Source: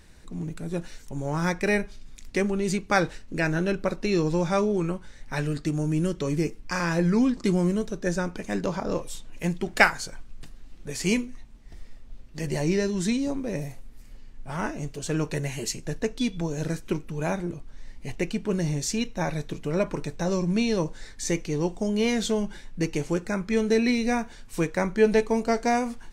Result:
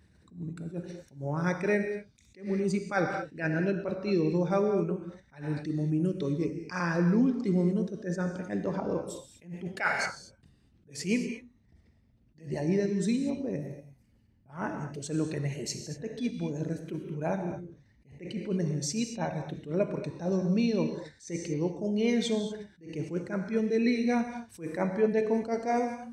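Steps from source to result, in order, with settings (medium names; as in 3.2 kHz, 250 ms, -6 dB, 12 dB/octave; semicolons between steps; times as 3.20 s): resonances exaggerated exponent 1.5; high-pass 72 Hz 24 dB/octave; band-stop 7 kHz, Q 14; gated-style reverb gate 260 ms flat, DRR 6 dB; attacks held to a fixed rise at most 180 dB/s; trim -3.5 dB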